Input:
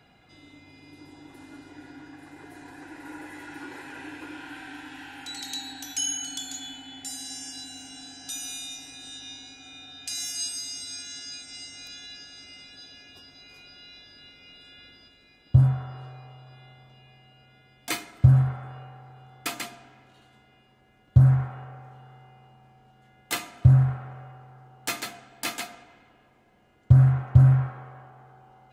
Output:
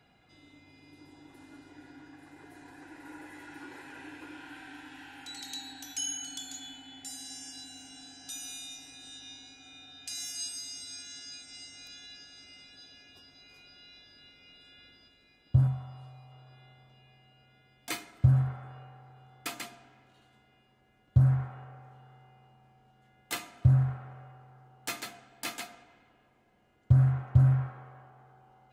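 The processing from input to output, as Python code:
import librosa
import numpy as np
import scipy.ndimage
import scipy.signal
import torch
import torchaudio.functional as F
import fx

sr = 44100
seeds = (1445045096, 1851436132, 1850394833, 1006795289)

y = fx.graphic_eq_15(x, sr, hz=(400, 1600, 10000), db=(-10, -9, 7), at=(15.67, 16.32))
y = y * librosa.db_to_amplitude(-6.0)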